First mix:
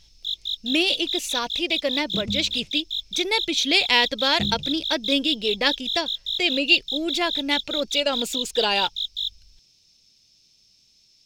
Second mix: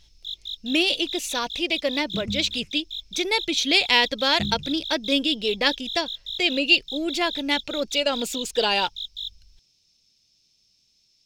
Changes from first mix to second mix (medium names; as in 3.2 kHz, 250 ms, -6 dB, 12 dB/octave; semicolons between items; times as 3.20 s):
first sound -5.5 dB; second sound: add static phaser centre 1.6 kHz, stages 4